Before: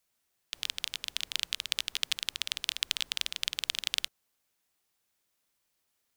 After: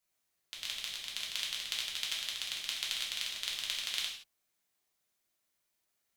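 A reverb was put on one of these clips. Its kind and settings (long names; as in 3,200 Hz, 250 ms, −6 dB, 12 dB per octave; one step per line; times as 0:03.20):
reverb whose tail is shaped and stops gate 200 ms falling, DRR −4 dB
level −8 dB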